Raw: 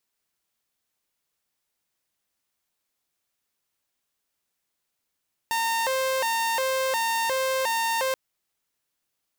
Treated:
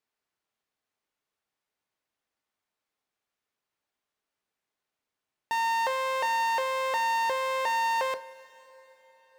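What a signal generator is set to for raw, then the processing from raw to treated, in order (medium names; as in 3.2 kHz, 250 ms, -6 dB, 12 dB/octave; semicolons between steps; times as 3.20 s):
siren hi-lo 526–914 Hz 1.4 per s saw -20.5 dBFS 2.63 s
low-pass 1.9 kHz 6 dB/octave; bass shelf 180 Hz -8 dB; two-slope reverb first 0.3 s, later 4.4 s, from -18 dB, DRR 9.5 dB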